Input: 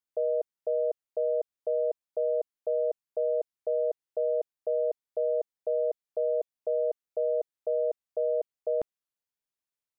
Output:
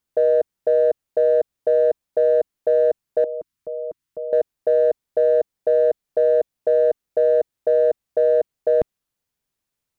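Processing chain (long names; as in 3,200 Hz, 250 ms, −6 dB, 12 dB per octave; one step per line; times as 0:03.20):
0:03.24–0:04.33: flat-topped bell 560 Hz −12.5 dB 1.3 octaves
in parallel at −7 dB: gain into a clipping stage and back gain 25 dB
on the sum: low-shelf EQ 280 Hz +10.5 dB
level +6 dB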